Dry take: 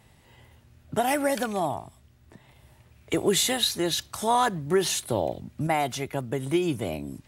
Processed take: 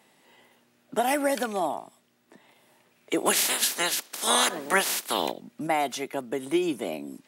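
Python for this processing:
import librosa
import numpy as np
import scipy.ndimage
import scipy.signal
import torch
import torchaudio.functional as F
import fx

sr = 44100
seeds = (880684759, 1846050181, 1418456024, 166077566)

y = fx.spec_clip(x, sr, under_db=26, at=(3.25, 5.3), fade=0.02)
y = scipy.signal.sosfilt(scipy.signal.butter(4, 220.0, 'highpass', fs=sr, output='sos'), y)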